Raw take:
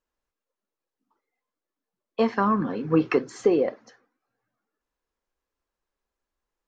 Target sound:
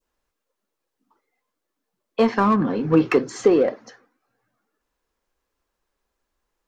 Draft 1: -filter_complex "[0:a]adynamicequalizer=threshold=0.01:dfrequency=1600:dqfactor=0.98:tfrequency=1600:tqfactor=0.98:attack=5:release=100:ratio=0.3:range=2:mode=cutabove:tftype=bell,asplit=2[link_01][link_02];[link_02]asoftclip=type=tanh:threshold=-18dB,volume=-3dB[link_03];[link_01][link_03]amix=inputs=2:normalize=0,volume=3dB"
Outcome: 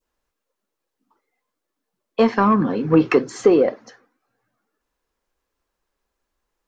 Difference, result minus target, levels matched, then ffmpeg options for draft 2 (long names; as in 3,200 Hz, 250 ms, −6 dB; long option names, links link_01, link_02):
soft clipping: distortion −8 dB
-filter_complex "[0:a]adynamicequalizer=threshold=0.01:dfrequency=1600:dqfactor=0.98:tfrequency=1600:tqfactor=0.98:attack=5:release=100:ratio=0.3:range=2:mode=cutabove:tftype=bell,asplit=2[link_01][link_02];[link_02]asoftclip=type=tanh:threshold=-29.5dB,volume=-3dB[link_03];[link_01][link_03]amix=inputs=2:normalize=0,volume=3dB"